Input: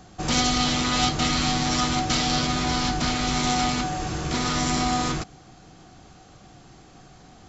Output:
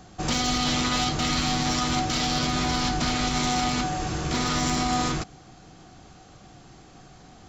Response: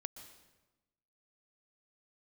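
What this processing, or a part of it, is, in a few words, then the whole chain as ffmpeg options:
limiter into clipper: -af "alimiter=limit=-15dB:level=0:latency=1:release=45,asoftclip=type=hard:threshold=-16.5dB"

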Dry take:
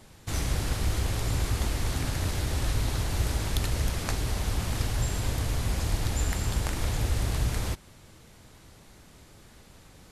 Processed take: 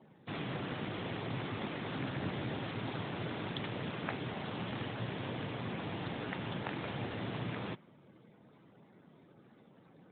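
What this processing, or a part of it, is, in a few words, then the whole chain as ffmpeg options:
mobile call with aggressive noise cancelling: -filter_complex "[0:a]asplit=3[link_01][link_02][link_03];[link_01]afade=type=out:start_time=2.15:duration=0.02[link_04];[link_02]lowshelf=frequency=270:gain=3.5,afade=type=in:start_time=2.15:duration=0.02,afade=type=out:start_time=2.56:duration=0.02[link_05];[link_03]afade=type=in:start_time=2.56:duration=0.02[link_06];[link_04][link_05][link_06]amix=inputs=3:normalize=0,highpass=frequency=140:width=0.5412,highpass=frequency=140:width=1.3066,afftdn=noise_reduction=21:noise_floor=-57,volume=-2dB" -ar 8000 -c:a libopencore_amrnb -b:a 12200

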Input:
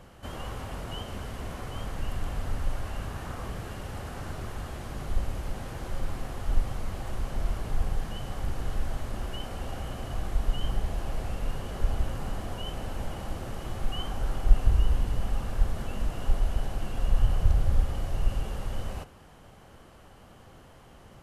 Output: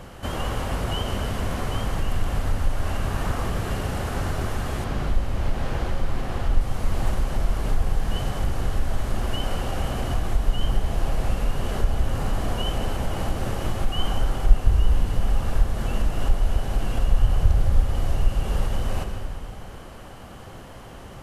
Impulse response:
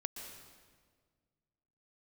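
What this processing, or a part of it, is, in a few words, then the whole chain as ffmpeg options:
ducked reverb: -filter_complex "[0:a]asplit=3[link_01][link_02][link_03];[1:a]atrim=start_sample=2205[link_04];[link_02][link_04]afir=irnorm=-1:irlink=0[link_05];[link_03]apad=whole_len=936021[link_06];[link_05][link_06]sidechaincompress=threshold=-31dB:ratio=8:attack=16:release=284,volume=6dB[link_07];[link_01][link_07]amix=inputs=2:normalize=0,asettb=1/sr,asplit=3[link_08][link_09][link_10];[link_08]atrim=end=4.844[link_11];[link_09]atrim=start=4.84:end=6.61,asetpts=PTS-STARTPTS,afade=type=in:duration=0.004:curve=qsin,afade=type=out:start_time=1.766:duration=0.004:curve=qsin,acrossover=split=5200[link_12][link_13];[link_13]acompressor=threshold=-55dB:ratio=4:attack=1:release=60[link_14];[link_12][link_14]amix=inputs=2:normalize=0[link_15];[link_10]atrim=start=6.606[link_16];[link_11][link_15]acrossfade=duration=0.004:curve1=hsin:curve2=qsin[link_17];[link_17][link_16]acrossfade=duration=0.004:curve1=qsin:curve2=hsin,volume=2dB"

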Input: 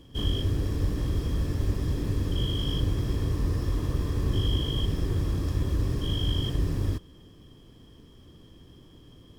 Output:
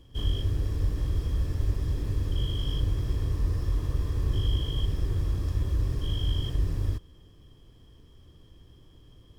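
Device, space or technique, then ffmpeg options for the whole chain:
low shelf boost with a cut just above: -af "lowshelf=frequency=110:gain=7.5,equalizer=frequency=220:width_type=o:width=1.1:gain=-6,volume=-4.5dB"

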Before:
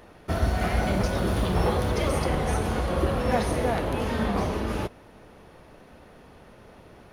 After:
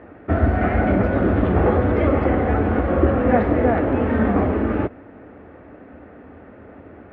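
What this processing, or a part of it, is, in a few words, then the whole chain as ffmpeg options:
bass cabinet: -af "highpass=75,equalizer=frequency=78:width_type=q:width=4:gain=5,equalizer=frequency=150:width_type=q:width=4:gain=-9,equalizer=frequency=280:width_type=q:width=4:gain=8,equalizer=frequency=980:width_type=q:width=4:gain=-7,lowpass=frequency=2000:width=0.5412,lowpass=frequency=2000:width=1.3066,volume=7.5dB"

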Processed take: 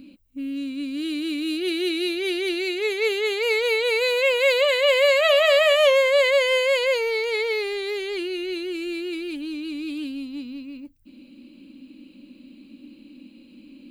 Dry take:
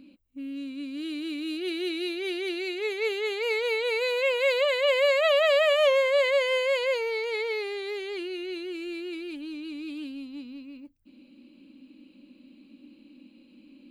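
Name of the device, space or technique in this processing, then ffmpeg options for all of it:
smiley-face EQ: -filter_complex "[0:a]asettb=1/sr,asplit=3[link_01][link_02][link_03];[link_01]atrim=end=4.574[link_04];[link_02]atrim=start=4.57:end=5.91,asetpts=PTS-STARTPTS,afade=type=in:duration=0.004:curve=qsin,afade=type=out:start_time=1.336:duration=0.004:curve=qsin,bandreject=frequency=160.3:width_type=h:width=4,bandreject=frequency=320.6:width_type=h:width=4,bandreject=frequency=480.9:width_type=h:width=4,bandreject=frequency=641.2:width_type=h:width=4,bandreject=frequency=801.5:width_type=h:width=4,bandreject=frequency=961.8:width_type=h:width=4,bandreject=frequency=1122.1:width_type=h:width=4,bandreject=frequency=1282.4:width_type=h:width=4,bandreject=frequency=1442.7:width_type=h:width=4,bandreject=frequency=1603:width_type=h:width=4,bandreject=frequency=1763.3:width_type=h:width=4,bandreject=frequency=1923.6:width_type=h:width=4,bandreject=frequency=2083.9:width_type=h:width=4,bandreject=frequency=2244.2:width_type=h:width=4,bandreject=frequency=2404.5:width_type=h:width=4,bandreject=frequency=2564.8:width_type=h:width=4,bandreject=frequency=2725.1:width_type=h:width=4,bandreject=frequency=2885.4:width_type=h:width=4,bandreject=frequency=3045.7:width_type=h:width=4,bandreject=frequency=3206:width_type=h:width=4,bandreject=frequency=3366.3:width_type=h:width=4,bandreject=frequency=3526.6:width_type=h:width=4,bandreject=frequency=3686.9:width_type=h:width=4,bandreject=frequency=3847.2:width_type=h:width=4,bandreject=frequency=4007.5:width_type=h:width=4,bandreject=frequency=4167.8:width_type=h:width=4,bandreject=frequency=4328.1:width_type=h:width=4,bandreject=frequency=4488.4:width_type=h:width=4,bandreject=frequency=4648.7:width_type=h:width=4,bandreject=frequency=4809:width_type=h:width=4,bandreject=frequency=4969.3:width_type=h:width=4,bandreject=frequency=5129.6:width_type=h:width=4,bandreject=frequency=5289.9:width_type=h:width=4,bandreject=frequency=5450.2:width_type=h:width=4,bandreject=frequency=5610.5:width_type=h:width=4,bandreject=frequency=5770.8:width_type=h:width=4[link_05];[link_03]atrim=start=5.906[link_06];[link_04][link_05]acrossfade=duration=0.004:curve1=hsin:curve2=qsin[link_07];[link_07][link_06]acrossfade=duration=0.004:curve1=qsin:curve2=hsin,lowshelf=frequency=120:gain=5,equalizer=frequency=850:width_type=o:width=1.6:gain=-3,highshelf=frequency=7300:gain=5.5,volume=6dB"

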